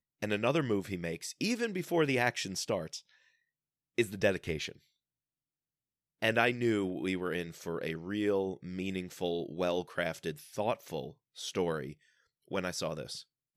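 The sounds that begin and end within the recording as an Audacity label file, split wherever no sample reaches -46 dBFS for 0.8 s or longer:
3.980000	4.720000	sound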